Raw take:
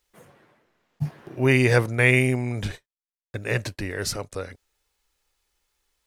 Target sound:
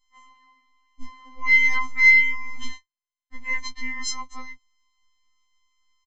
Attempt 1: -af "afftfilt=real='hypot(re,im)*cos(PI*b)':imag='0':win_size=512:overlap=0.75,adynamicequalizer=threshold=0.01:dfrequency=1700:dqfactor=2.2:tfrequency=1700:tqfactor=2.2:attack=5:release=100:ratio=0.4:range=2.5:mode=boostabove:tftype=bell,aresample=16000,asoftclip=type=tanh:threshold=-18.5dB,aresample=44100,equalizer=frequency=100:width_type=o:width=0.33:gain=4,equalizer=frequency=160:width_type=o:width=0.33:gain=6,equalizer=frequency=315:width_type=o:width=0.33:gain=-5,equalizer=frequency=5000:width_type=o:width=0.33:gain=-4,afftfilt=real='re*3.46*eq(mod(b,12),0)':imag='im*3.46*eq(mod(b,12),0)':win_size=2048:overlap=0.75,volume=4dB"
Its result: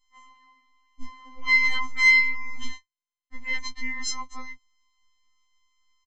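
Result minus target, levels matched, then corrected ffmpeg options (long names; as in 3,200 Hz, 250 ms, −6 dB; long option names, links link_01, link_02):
soft clipping: distortion +9 dB
-af "afftfilt=real='hypot(re,im)*cos(PI*b)':imag='0':win_size=512:overlap=0.75,adynamicequalizer=threshold=0.01:dfrequency=1700:dqfactor=2.2:tfrequency=1700:tqfactor=2.2:attack=5:release=100:ratio=0.4:range=2.5:mode=boostabove:tftype=bell,aresample=16000,asoftclip=type=tanh:threshold=-10.5dB,aresample=44100,equalizer=frequency=100:width_type=o:width=0.33:gain=4,equalizer=frequency=160:width_type=o:width=0.33:gain=6,equalizer=frequency=315:width_type=o:width=0.33:gain=-5,equalizer=frequency=5000:width_type=o:width=0.33:gain=-4,afftfilt=real='re*3.46*eq(mod(b,12),0)':imag='im*3.46*eq(mod(b,12),0)':win_size=2048:overlap=0.75,volume=4dB"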